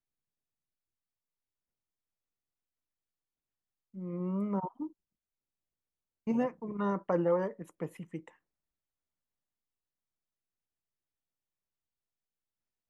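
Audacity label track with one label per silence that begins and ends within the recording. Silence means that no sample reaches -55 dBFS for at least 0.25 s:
4.920000	6.270000	silence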